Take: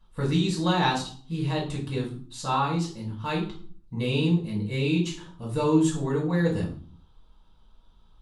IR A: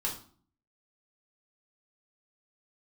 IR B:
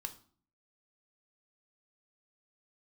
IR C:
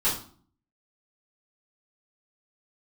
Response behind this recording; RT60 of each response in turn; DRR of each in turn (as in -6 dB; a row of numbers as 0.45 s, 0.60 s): A; 0.50 s, 0.50 s, 0.50 s; -3.0 dB, 6.5 dB, -11.0 dB